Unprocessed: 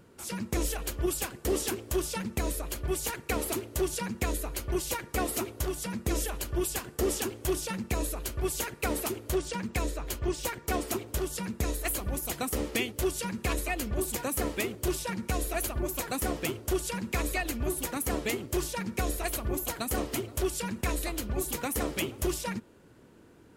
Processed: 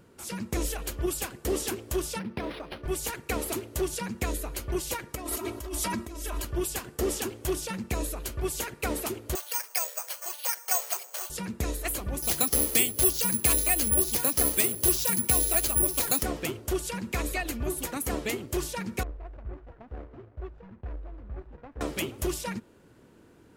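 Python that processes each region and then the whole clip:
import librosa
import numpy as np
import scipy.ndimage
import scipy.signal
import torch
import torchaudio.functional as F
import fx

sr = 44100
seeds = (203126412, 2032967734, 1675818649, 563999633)

y = fx.chain(x, sr, fx.highpass(hz=120.0, slope=12),
    fx.high_shelf(hz=9000.0, db=-5.0),
    fx.resample_linear(factor=6), at=(2.19, 2.86))
y = fx.chain(y, sr, fx.peak_eq(hz=1100.0, db=6.0, octaves=0.4),
    fx.comb(ms=3.1, depth=0.89),
    fx.over_compress(threshold_db=-34.0, ratio=-1.0), at=(5.15, 6.45))
y = fx.chain(y, sr, fx.steep_highpass(hz=580.0, slope=36),
    fx.resample_bad(factor=6, down='filtered', up='zero_stuff'), at=(9.35, 11.3))
y = fx.chain(y, sr, fx.bass_treble(bass_db=0, treble_db=13),
    fx.resample_bad(factor=4, down='filtered', up='zero_stuff'),
    fx.band_squash(depth_pct=40), at=(12.22, 16.23))
y = fx.chain(y, sr, fx.median_filter(points=41),
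    fx.lowpass(hz=1300.0, slope=12),
    fx.peak_eq(hz=250.0, db=-14.0, octaves=3.0), at=(19.03, 21.81))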